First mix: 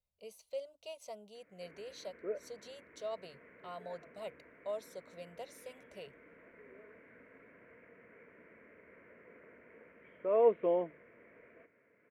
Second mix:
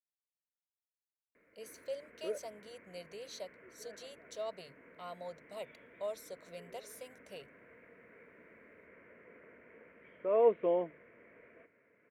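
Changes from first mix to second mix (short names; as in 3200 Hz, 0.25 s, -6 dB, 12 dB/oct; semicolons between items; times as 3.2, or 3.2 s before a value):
speech: entry +1.35 s; master: add high shelf 5300 Hz +7 dB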